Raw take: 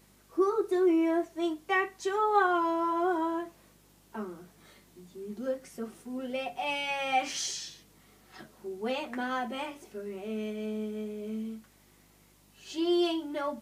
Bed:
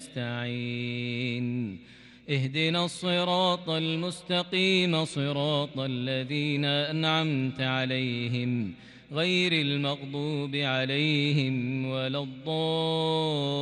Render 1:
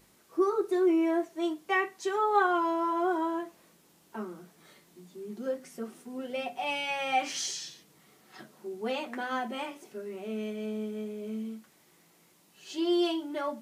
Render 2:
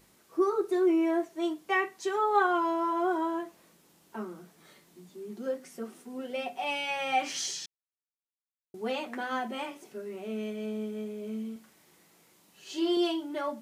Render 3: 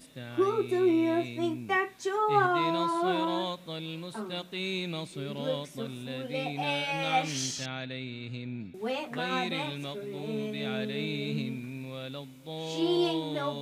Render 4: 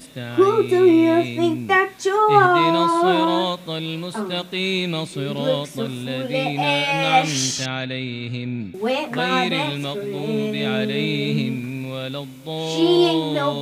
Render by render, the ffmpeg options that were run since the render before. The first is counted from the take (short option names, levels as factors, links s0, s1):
-af "bandreject=f=50:t=h:w=4,bandreject=f=100:t=h:w=4,bandreject=f=150:t=h:w=4,bandreject=f=200:t=h:w=4,bandreject=f=250:t=h:w=4"
-filter_complex "[0:a]asettb=1/sr,asplit=3[s0][s1][s2];[s0]atrim=end=5.094[s3];[s1]atrim=start=5.09:end=6.97,asetpts=PTS-STARTPTS,afade=t=in:d=0.004:c=qsin,afade=t=out:st=1.876:d=0.004:c=qsin,highpass=160[s4];[s2]atrim=start=6.966[s5];[s3][s4]acrossfade=d=0.004:c1=hsin:c2=qsin[s6];[s6][s5]acrossfade=d=0.004:c1=qsin:c2=hsin,asettb=1/sr,asplit=3[s7][s8][s9];[s7]atrim=end=11.524[s10];[s8]atrim=start=11.52:end=12.97,asetpts=PTS-STARTPTS,afade=t=in:d=0.004:c=qsin,afade=t=out:st=1.446:d=0.004:c=qsin,asplit=2[s11][s12];[s12]adelay=39,volume=0.501[s13];[s11][s13]amix=inputs=2:normalize=0,atrim=end_sample=63945[s14];[s9]atrim=start=12.966[s15];[s10][s14]acrossfade=d=0.004:c1=hsin:c2=qsin[s16];[s16][s15]acrossfade=d=0.004:c1=qsin:c2=hsin,asplit=3[s17][s18][s19];[s17]atrim=end=7.66,asetpts=PTS-STARTPTS,afade=t=out:st=7.656:d=0.004:c=hsin[s20];[s18]atrim=start=7.66:end=8.74,asetpts=PTS-STARTPTS,volume=0[s21];[s19]atrim=start=8.74,asetpts=PTS-STARTPTS,afade=t=in:d=0.004:c=hsin[s22];[s20][s21][s22]concat=n=3:v=0:a=1"
-filter_complex "[1:a]volume=0.335[s0];[0:a][s0]amix=inputs=2:normalize=0"
-af "volume=3.55,alimiter=limit=0.708:level=0:latency=1"